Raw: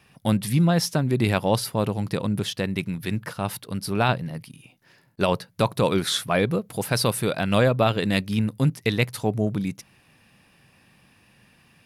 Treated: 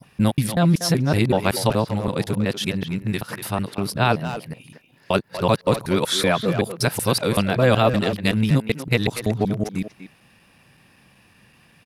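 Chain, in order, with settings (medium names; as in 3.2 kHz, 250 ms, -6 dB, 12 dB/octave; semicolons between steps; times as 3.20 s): time reversed locally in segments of 189 ms; speakerphone echo 240 ms, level -8 dB; trim +2.5 dB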